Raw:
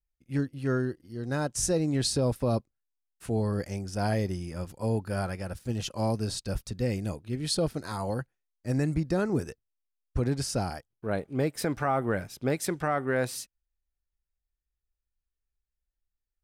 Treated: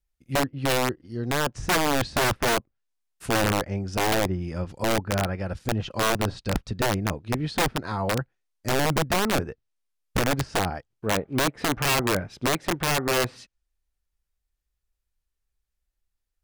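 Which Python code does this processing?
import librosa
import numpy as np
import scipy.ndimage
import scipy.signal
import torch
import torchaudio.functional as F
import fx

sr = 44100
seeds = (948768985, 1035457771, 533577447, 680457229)

y = fx.env_lowpass_down(x, sr, base_hz=1900.0, full_db=-27.5)
y = (np.mod(10.0 ** (22.0 / 20.0) * y + 1.0, 2.0) - 1.0) / 10.0 ** (22.0 / 20.0)
y = y * librosa.db_to_amplitude(5.5)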